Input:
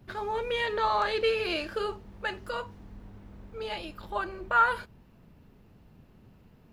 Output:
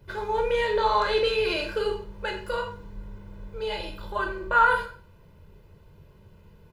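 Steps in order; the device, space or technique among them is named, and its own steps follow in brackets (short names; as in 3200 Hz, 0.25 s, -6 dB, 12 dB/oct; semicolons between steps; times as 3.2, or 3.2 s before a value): microphone above a desk (comb 2 ms, depth 72%; reverb RT60 0.50 s, pre-delay 13 ms, DRR 3 dB)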